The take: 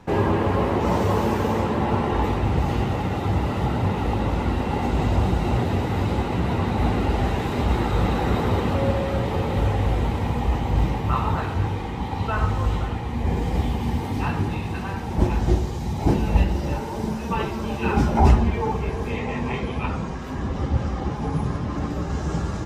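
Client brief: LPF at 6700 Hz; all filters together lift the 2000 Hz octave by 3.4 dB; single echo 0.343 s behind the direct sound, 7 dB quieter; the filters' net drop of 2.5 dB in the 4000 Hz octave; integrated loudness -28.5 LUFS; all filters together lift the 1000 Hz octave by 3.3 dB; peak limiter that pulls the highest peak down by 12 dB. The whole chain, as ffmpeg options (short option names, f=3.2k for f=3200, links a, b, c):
-af "lowpass=6.7k,equalizer=f=1k:t=o:g=3.5,equalizer=f=2k:t=o:g=4.5,equalizer=f=4k:t=o:g=-5.5,alimiter=limit=-15.5dB:level=0:latency=1,aecho=1:1:343:0.447,volume=-4dB"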